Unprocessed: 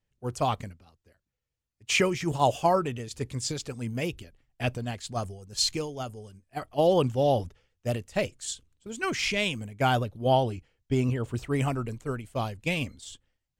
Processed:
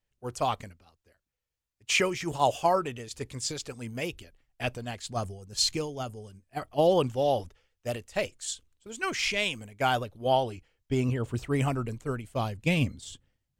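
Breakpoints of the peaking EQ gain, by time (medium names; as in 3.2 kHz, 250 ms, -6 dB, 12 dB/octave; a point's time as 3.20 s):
peaking EQ 140 Hz 2.5 oct
4.83 s -6.5 dB
5.23 s 0 dB
6.79 s 0 dB
7.26 s -8 dB
10.48 s -8 dB
11.20 s 0 dB
12.39 s 0 dB
12.85 s +8 dB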